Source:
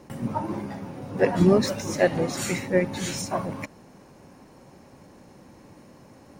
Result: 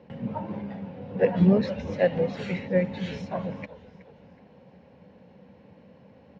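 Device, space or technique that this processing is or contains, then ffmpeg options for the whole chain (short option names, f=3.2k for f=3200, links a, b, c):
frequency-shifting delay pedal into a guitar cabinet: -filter_complex "[0:a]asplit=5[a][b][c][d][e];[b]adelay=371,afreqshift=-110,volume=-17.5dB[f];[c]adelay=742,afreqshift=-220,volume=-24.8dB[g];[d]adelay=1113,afreqshift=-330,volume=-32.2dB[h];[e]adelay=1484,afreqshift=-440,volume=-39.5dB[i];[a][f][g][h][i]amix=inputs=5:normalize=0,highpass=78,equalizer=f=80:t=q:w=4:g=6,equalizer=f=190:t=q:w=4:g=8,equalizer=f=340:t=q:w=4:g=-9,equalizer=f=490:t=q:w=4:g=9,equalizer=f=1.2k:t=q:w=4:g=-7,equalizer=f=2.9k:t=q:w=4:g=3,lowpass=f=3.7k:w=0.5412,lowpass=f=3.7k:w=1.3066,volume=-5dB"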